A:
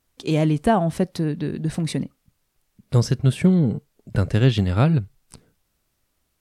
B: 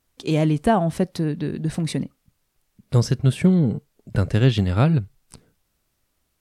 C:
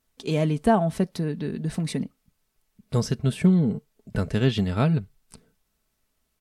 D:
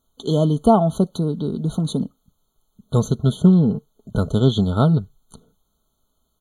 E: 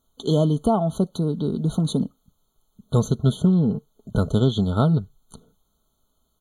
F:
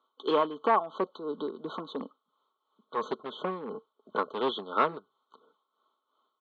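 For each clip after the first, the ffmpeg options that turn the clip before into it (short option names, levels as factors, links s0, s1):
-af anull
-af "aecho=1:1:4.6:0.4,volume=0.668"
-af "afftfilt=real='re*eq(mod(floor(b*sr/1024/1500),2),0)':imag='im*eq(mod(floor(b*sr/1024/1500),2),0)':win_size=1024:overlap=0.75,volume=1.88"
-af "alimiter=limit=0.355:level=0:latency=1:release=480"
-af "asoftclip=type=hard:threshold=0.188,tremolo=f=2.9:d=0.63,highpass=f=380:w=0.5412,highpass=f=380:w=1.3066,equalizer=f=420:t=q:w=4:g=-3,equalizer=f=680:t=q:w=4:g=-8,equalizer=f=1100:t=q:w=4:g=10,lowpass=f=3200:w=0.5412,lowpass=f=3200:w=1.3066,volume=1.33"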